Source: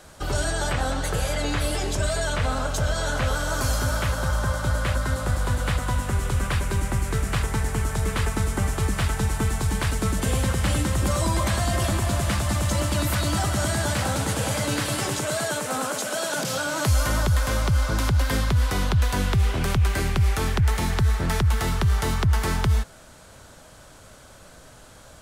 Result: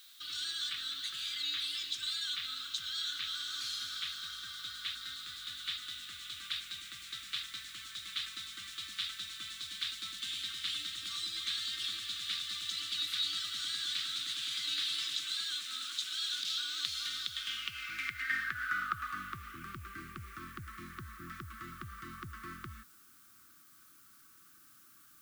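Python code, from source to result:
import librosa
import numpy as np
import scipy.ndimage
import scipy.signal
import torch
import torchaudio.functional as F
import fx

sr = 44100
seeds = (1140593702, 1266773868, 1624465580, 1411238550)

y = fx.filter_sweep_bandpass(x, sr, from_hz=3700.0, to_hz=740.0, start_s=17.26, end_s=19.77, q=6.1)
y = fx.brickwall_bandstop(y, sr, low_hz=370.0, high_hz=1100.0)
y = fx.dmg_noise_colour(y, sr, seeds[0], colour='blue', level_db=-66.0)
y = y * 10.0 ** (5.0 / 20.0)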